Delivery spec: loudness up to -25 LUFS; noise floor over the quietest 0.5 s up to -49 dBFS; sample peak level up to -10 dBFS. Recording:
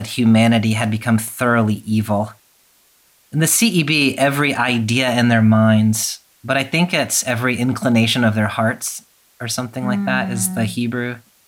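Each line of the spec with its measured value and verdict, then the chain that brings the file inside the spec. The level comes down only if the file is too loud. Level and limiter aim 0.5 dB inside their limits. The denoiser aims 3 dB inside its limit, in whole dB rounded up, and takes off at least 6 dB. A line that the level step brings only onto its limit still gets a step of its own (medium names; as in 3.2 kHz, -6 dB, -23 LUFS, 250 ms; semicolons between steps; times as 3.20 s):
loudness -17.0 LUFS: fail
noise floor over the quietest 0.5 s -56 dBFS: pass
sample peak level -4.5 dBFS: fail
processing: trim -8.5 dB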